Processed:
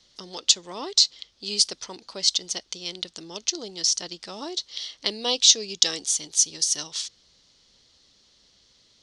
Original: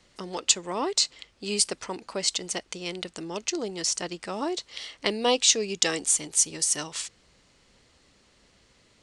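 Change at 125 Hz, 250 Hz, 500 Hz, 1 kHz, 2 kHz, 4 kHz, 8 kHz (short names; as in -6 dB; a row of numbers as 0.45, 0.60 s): -6.0, -6.0, -6.0, -6.0, -5.0, +6.0, +2.0 dB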